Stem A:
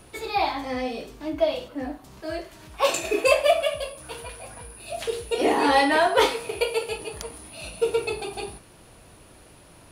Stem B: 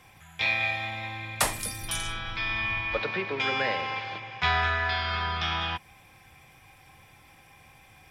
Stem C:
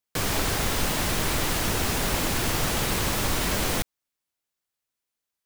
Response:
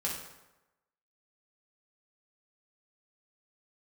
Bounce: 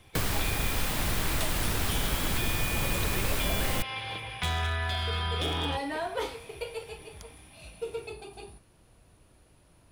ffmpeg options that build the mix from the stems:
-filter_complex "[0:a]volume=-13dB[link_01];[1:a]equalizer=frequency=3400:width=1.9:gain=9,dynaudnorm=framelen=200:gausssize=13:maxgain=8dB,asoftclip=type=hard:threshold=-12dB,volume=-8dB[link_02];[2:a]equalizer=frequency=6300:width_type=o:width=0.77:gain=-4,volume=1.5dB[link_03];[link_01][link_02][link_03]amix=inputs=3:normalize=0,lowshelf=frequency=140:gain=9,acrossover=split=820|6800[link_04][link_05][link_06];[link_04]acompressor=threshold=-28dB:ratio=4[link_07];[link_05]acompressor=threshold=-34dB:ratio=4[link_08];[link_06]acompressor=threshold=-35dB:ratio=4[link_09];[link_07][link_08][link_09]amix=inputs=3:normalize=0"

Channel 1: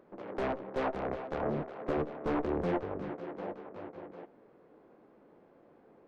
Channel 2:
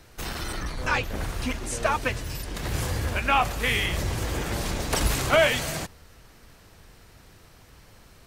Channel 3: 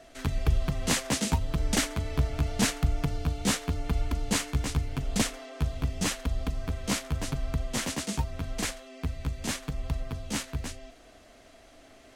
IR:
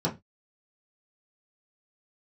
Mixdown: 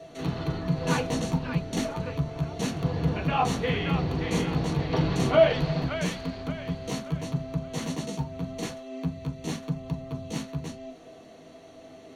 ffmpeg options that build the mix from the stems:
-filter_complex "[0:a]volume=-15dB[link_01];[1:a]lowpass=frequency=4000:width=0.5412,lowpass=frequency=4000:width=1.3066,volume=1dB,afade=type=out:start_time=1.07:duration=0.52:silence=0.266073,afade=type=in:start_time=2.64:duration=0.32:silence=0.251189,asplit=3[link_02][link_03][link_04];[link_03]volume=-4dB[link_05];[link_04]volume=-3.5dB[link_06];[2:a]acompressor=threshold=-44dB:ratio=1.5,volume=-1.5dB,asplit=2[link_07][link_08];[link_08]volume=-7dB[link_09];[3:a]atrim=start_sample=2205[link_10];[link_05][link_09]amix=inputs=2:normalize=0[link_11];[link_11][link_10]afir=irnorm=-1:irlink=0[link_12];[link_06]aecho=0:1:578|1156|1734|2312|2890|3468:1|0.41|0.168|0.0689|0.0283|0.0116[link_13];[link_01][link_02][link_07][link_12][link_13]amix=inputs=5:normalize=0,equalizer=frequency=4400:width=7:gain=12.5"

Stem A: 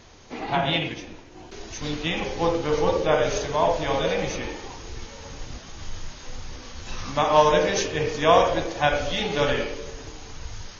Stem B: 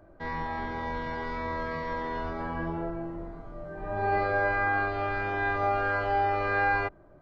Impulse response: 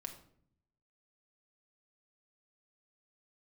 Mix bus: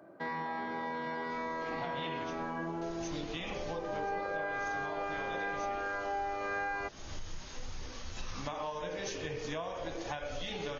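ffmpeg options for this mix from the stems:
-filter_complex "[0:a]acompressor=threshold=-26dB:ratio=6,flanger=delay=1.5:depth=5.8:regen=84:speed=0.44:shape=sinusoidal,adelay=1300,volume=-0.5dB[link_01];[1:a]highpass=frequency=160:width=0.5412,highpass=frequency=160:width=1.3066,volume=1.5dB[link_02];[link_01][link_02]amix=inputs=2:normalize=0,acompressor=threshold=-35dB:ratio=4"

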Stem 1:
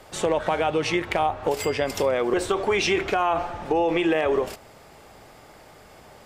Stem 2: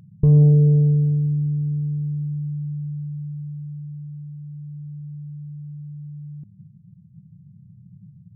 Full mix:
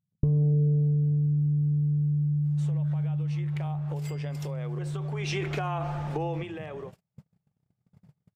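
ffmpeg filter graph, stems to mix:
ffmpeg -i stem1.wav -i stem2.wav -filter_complex "[0:a]acompressor=threshold=-25dB:ratio=4,adelay=2450,volume=-4dB,afade=type=in:start_time=3.35:duration=0.33:silence=0.446684,afade=type=in:start_time=5.13:duration=0.23:silence=0.354813,afade=type=out:start_time=6.26:duration=0.2:silence=0.421697[link_01];[1:a]volume=2dB[link_02];[link_01][link_02]amix=inputs=2:normalize=0,agate=range=-38dB:threshold=-39dB:ratio=16:detection=peak,acompressor=threshold=-23dB:ratio=5" out.wav

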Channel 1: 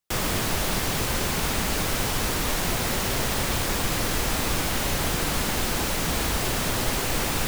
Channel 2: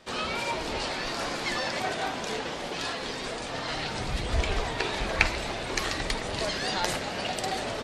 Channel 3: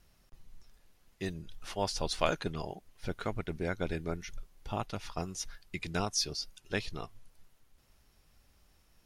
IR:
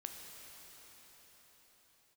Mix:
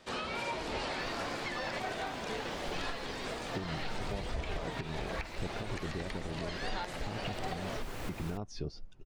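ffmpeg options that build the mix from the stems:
-filter_complex "[0:a]adelay=900,volume=-11.5dB,afade=type=in:start_time=7.2:duration=0.23:silence=0.316228[link_01];[1:a]alimiter=limit=-14.5dB:level=0:latency=1:release=346,volume=-3.5dB[link_02];[2:a]lowpass=7300,tiltshelf=frequency=970:gain=8,alimiter=limit=-20dB:level=0:latency=1,adelay=2350,volume=1.5dB[link_03];[link_01][link_03]amix=inputs=2:normalize=0,highshelf=frequency=3700:gain=-10.5,acompressor=threshold=-29dB:ratio=6,volume=0dB[link_04];[link_02][link_04]amix=inputs=2:normalize=0,acrossover=split=3300[link_05][link_06];[link_06]acompressor=threshold=-45dB:ratio=4:attack=1:release=60[link_07];[link_05][link_07]amix=inputs=2:normalize=0,alimiter=level_in=2.5dB:limit=-24dB:level=0:latency=1:release=353,volume=-2.5dB"

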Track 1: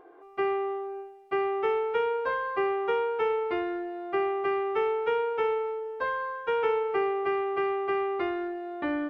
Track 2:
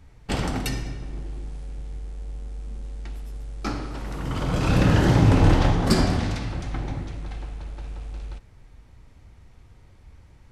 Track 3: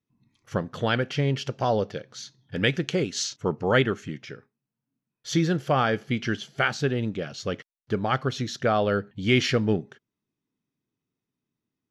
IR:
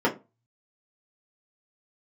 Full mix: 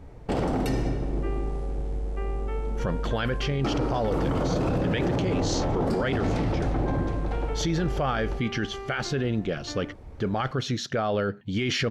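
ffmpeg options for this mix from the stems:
-filter_complex "[0:a]adelay=850,volume=-10.5dB[link_01];[1:a]equalizer=frequency=530:width_type=o:width=2.4:gain=13,acompressor=threshold=-20dB:ratio=6,lowshelf=frequency=490:gain=6.5,volume=-3dB[link_02];[2:a]highshelf=frequency=8200:gain=-4.5,adelay=2300,volume=2.5dB[link_03];[link_01][link_02][link_03]amix=inputs=3:normalize=0,alimiter=limit=-18dB:level=0:latency=1:release=12"

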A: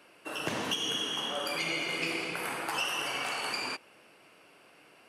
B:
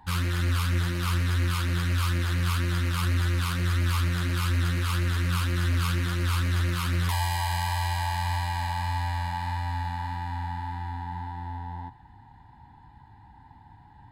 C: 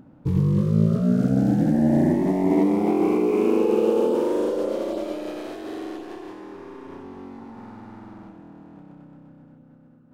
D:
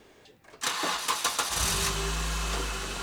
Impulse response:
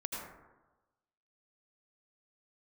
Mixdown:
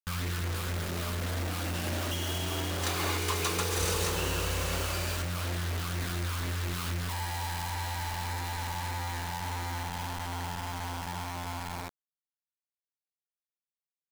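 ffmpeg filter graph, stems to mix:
-filter_complex "[0:a]adelay=1400,volume=-8dB[link_01];[1:a]acompressor=threshold=-34dB:ratio=6,volume=-0.5dB[link_02];[2:a]highpass=570,volume=-11dB[link_03];[3:a]adelay=2200,volume=-5.5dB[link_04];[link_01][link_02][link_03][link_04]amix=inputs=4:normalize=0,acrusher=bits=5:mix=0:aa=0.000001"

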